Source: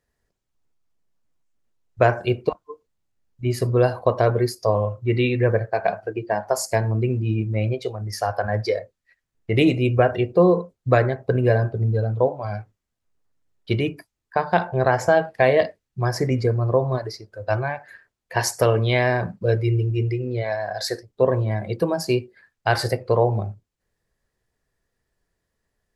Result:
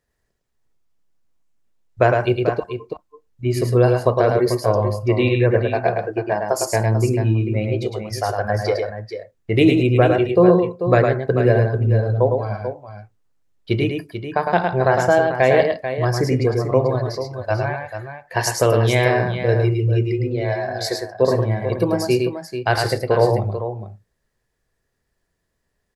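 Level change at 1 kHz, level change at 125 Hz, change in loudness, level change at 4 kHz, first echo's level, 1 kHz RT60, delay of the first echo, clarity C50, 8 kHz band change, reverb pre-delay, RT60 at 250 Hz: +2.5 dB, +3.0 dB, +3.0 dB, +2.5 dB, −4.5 dB, no reverb audible, 107 ms, no reverb audible, +2.5 dB, no reverb audible, no reverb audible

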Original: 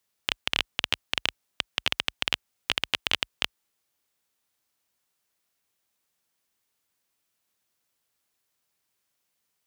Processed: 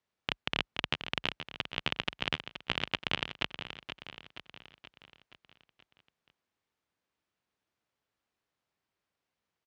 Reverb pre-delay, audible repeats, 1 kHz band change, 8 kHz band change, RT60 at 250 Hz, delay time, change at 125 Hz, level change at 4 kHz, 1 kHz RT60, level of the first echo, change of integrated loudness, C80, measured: no reverb audible, 5, −2.0 dB, −15.0 dB, no reverb audible, 476 ms, +4.0 dB, −7.0 dB, no reverb audible, −10.0 dB, −6.5 dB, no reverb audible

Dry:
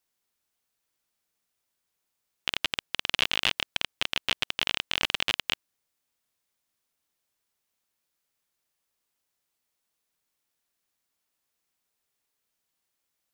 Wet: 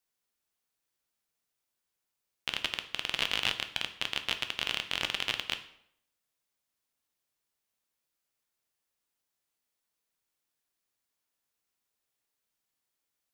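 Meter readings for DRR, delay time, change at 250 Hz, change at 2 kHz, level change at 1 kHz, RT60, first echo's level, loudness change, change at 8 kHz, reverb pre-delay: 7.5 dB, no echo audible, −3.5 dB, −4.0 dB, −3.5 dB, 0.70 s, no echo audible, −4.0 dB, −4.0 dB, 7 ms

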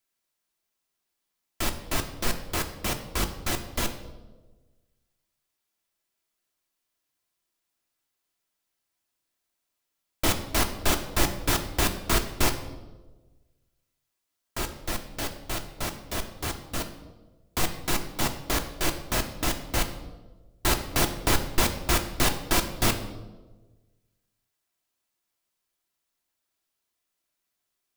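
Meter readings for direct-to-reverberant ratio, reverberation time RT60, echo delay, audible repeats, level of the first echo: 4.5 dB, 1.3 s, no echo audible, no echo audible, no echo audible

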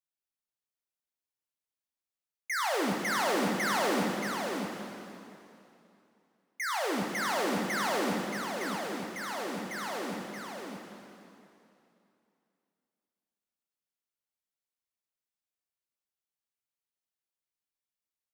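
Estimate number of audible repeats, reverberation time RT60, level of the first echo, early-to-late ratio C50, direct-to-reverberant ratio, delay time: 1, 2.8 s, −5.5 dB, −0.5 dB, −1.5 dB, 628 ms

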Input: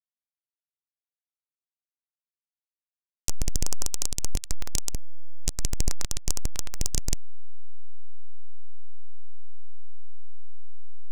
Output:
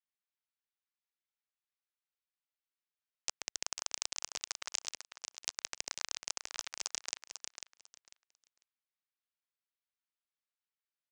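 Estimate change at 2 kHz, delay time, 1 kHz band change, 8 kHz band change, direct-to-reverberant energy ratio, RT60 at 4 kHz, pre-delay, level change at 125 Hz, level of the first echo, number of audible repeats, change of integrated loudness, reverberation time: +1.5 dB, 497 ms, −2.0 dB, −7.5 dB, no reverb audible, no reverb audible, no reverb audible, below −35 dB, −7.5 dB, 2, −7.5 dB, no reverb audible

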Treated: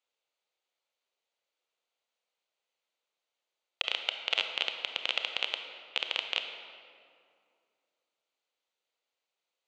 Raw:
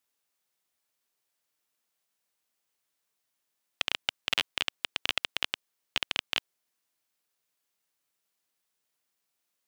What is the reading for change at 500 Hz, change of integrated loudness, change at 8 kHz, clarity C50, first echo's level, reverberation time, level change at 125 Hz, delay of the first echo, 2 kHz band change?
+2.0 dB, −0.5 dB, −9.0 dB, 6.5 dB, no echo audible, 2.3 s, below −15 dB, no echo audible, −1.0 dB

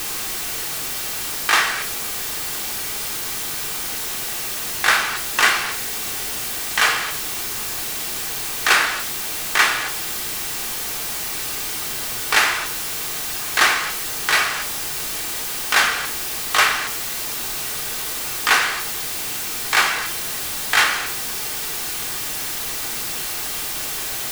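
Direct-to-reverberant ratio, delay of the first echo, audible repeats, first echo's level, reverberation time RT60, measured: 3.0 dB, no echo audible, no echo audible, no echo audible, 0.50 s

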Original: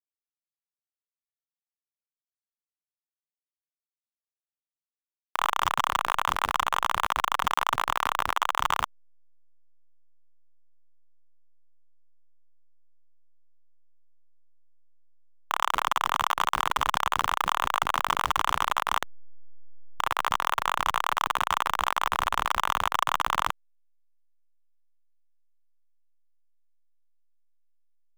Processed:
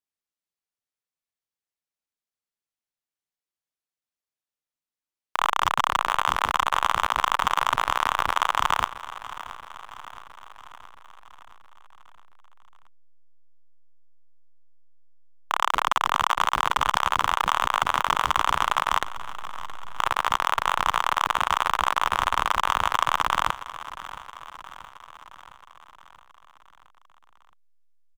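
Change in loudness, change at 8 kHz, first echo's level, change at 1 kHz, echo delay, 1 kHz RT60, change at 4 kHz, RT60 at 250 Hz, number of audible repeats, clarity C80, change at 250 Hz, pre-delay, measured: +3.0 dB, +1.5 dB, −15.5 dB, +3.0 dB, 671 ms, no reverb audible, +3.0 dB, no reverb audible, 5, no reverb audible, +3.0 dB, no reverb audible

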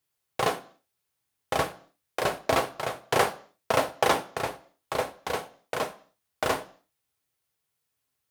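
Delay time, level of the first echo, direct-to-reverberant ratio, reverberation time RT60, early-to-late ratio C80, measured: no echo audible, no echo audible, 9.0 dB, 0.55 s, 21.5 dB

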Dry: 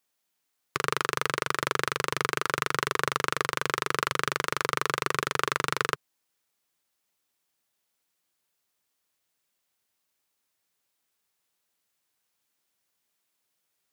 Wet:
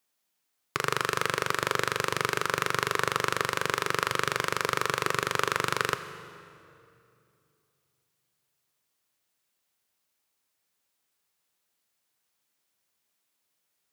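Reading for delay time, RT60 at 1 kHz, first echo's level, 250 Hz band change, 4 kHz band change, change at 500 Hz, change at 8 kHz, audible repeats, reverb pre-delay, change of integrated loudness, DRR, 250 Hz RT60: no echo audible, 2.4 s, no echo audible, +0.5 dB, +0.5 dB, +1.0 dB, +0.5 dB, no echo audible, 11 ms, +0.5 dB, 10.0 dB, 3.1 s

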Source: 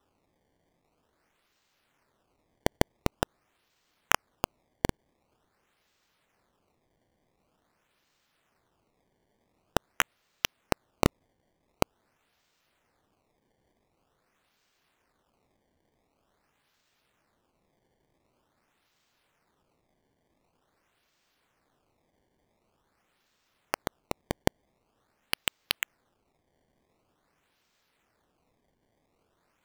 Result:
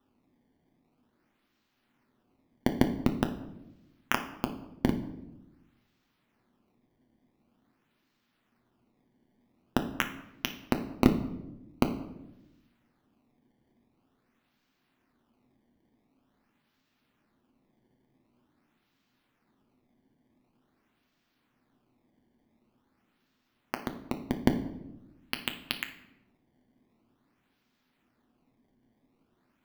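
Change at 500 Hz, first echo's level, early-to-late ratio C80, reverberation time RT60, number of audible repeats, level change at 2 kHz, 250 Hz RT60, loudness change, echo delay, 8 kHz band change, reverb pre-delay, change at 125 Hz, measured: −1.5 dB, no echo audible, 13.5 dB, 0.95 s, no echo audible, −2.5 dB, 1.4 s, +0.5 dB, no echo audible, −8.5 dB, 8 ms, +2.5 dB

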